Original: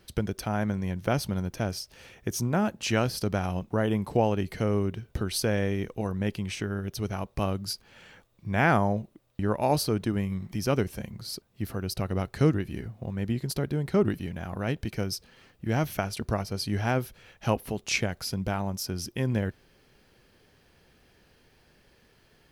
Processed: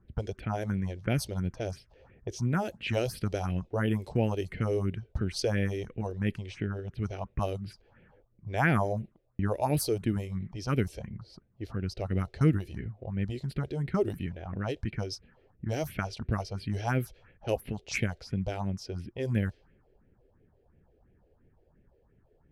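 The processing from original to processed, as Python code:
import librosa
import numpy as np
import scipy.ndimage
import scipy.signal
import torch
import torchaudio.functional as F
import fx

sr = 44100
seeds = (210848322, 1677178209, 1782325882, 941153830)

y = fx.env_lowpass(x, sr, base_hz=750.0, full_db=-22.0)
y = fx.phaser_stages(y, sr, stages=4, low_hz=170.0, high_hz=1100.0, hz=2.9, feedback_pct=30)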